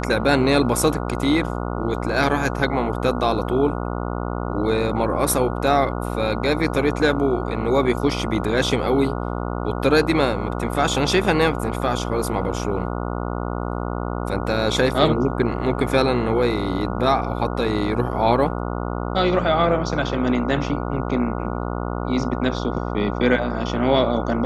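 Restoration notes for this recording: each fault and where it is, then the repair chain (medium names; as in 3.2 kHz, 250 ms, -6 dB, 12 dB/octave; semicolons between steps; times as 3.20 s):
buzz 60 Hz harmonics 24 -26 dBFS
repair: de-hum 60 Hz, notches 24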